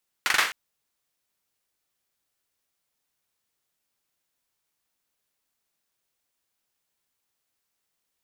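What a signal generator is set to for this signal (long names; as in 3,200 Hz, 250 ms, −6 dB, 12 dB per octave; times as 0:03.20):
synth clap length 0.26 s, apart 41 ms, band 1,700 Hz, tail 0.41 s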